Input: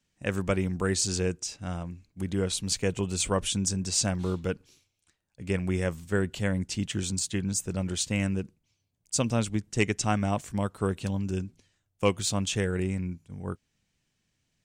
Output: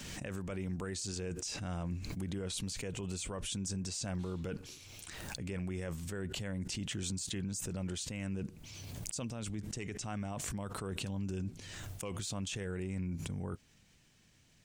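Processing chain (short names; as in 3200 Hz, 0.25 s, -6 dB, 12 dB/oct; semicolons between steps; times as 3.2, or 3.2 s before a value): reverse; compressor 8:1, threshold -41 dBFS, peak gain reduction 22 dB; reverse; limiter -40 dBFS, peak gain reduction 11 dB; backwards sustainer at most 23 dB/s; gain +9 dB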